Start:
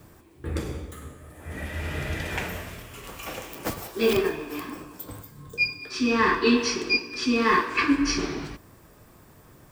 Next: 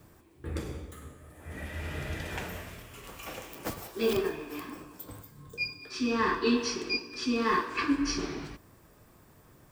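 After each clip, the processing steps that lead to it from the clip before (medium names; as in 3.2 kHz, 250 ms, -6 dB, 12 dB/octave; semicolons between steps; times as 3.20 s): dynamic bell 2.2 kHz, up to -5 dB, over -38 dBFS; trim -5.5 dB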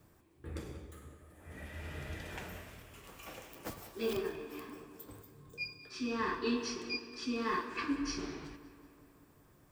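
filtered feedback delay 188 ms, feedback 66%, low-pass 4.4 kHz, level -15 dB; trim -7.5 dB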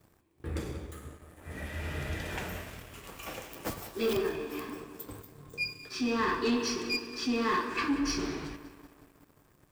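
waveshaping leveller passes 2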